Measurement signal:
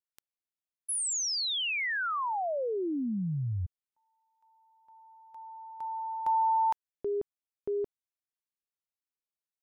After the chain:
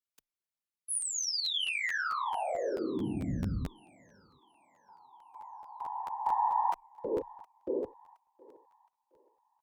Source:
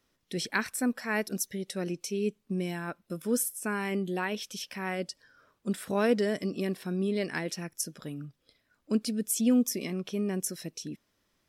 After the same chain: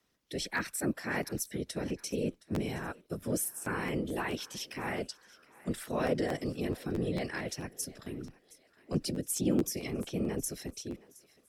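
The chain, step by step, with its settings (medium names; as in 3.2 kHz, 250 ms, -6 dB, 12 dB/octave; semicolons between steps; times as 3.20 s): in parallel at +2 dB: peak limiter -24 dBFS; on the sum: Chebyshev shaper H 4 -38 dB, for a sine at -10.5 dBFS; whisper effect; frequency shift +16 Hz; on a send: thinning echo 718 ms, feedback 44%, high-pass 510 Hz, level -20 dB; on the sum: crackling interface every 0.22 s, samples 512, repeat, from 0.56 s; trim -9 dB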